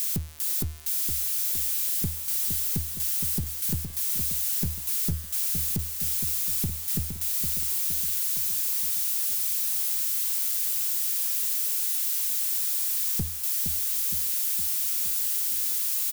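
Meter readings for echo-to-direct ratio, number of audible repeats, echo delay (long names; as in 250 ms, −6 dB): −6.0 dB, 5, 465 ms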